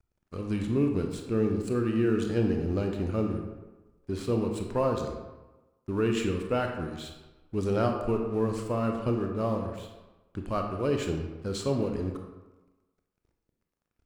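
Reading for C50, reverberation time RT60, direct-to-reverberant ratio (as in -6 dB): 5.0 dB, 1.1 s, 3.0 dB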